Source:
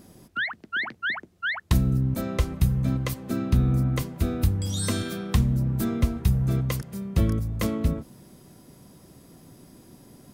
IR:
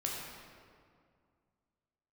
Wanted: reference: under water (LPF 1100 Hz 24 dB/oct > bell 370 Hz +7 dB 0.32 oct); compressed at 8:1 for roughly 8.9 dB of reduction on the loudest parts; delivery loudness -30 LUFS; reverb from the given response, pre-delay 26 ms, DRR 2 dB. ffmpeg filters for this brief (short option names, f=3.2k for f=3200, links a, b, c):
-filter_complex "[0:a]acompressor=threshold=-25dB:ratio=8,asplit=2[a][b];[1:a]atrim=start_sample=2205,adelay=26[c];[b][c]afir=irnorm=-1:irlink=0,volume=-5dB[d];[a][d]amix=inputs=2:normalize=0,lowpass=f=1.1k:w=0.5412,lowpass=f=1.1k:w=1.3066,equalizer=f=370:t=o:w=0.32:g=7"